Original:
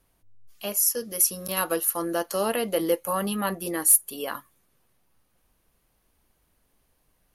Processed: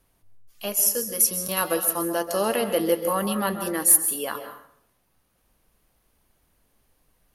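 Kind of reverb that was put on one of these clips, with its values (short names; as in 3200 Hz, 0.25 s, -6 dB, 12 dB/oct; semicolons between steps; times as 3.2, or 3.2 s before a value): plate-style reverb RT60 0.65 s, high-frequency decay 0.75×, pre-delay 0.12 s, DRR 8.5 dB; gain +1.5 dB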